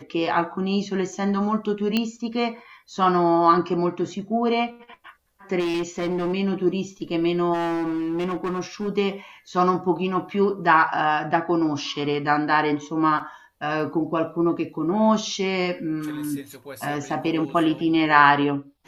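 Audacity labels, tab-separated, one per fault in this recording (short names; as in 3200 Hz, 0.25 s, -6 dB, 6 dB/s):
1.970000	1.970000	pop -9 dBFS
5.590000	6.340000	clipped -21.5 dBFS
7.530000	8.890000	clipped -22.5 dBFS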